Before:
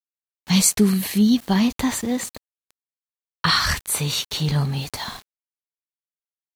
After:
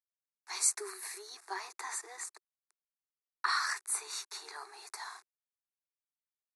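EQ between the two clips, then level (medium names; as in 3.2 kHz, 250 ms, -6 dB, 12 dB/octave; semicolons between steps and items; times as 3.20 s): steep high-pass 360 Hz 96 dB/octave; Chebyshev low-pass 11 kHz, order 6; static phaser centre 1.3 kHz, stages 4; -8.0 dB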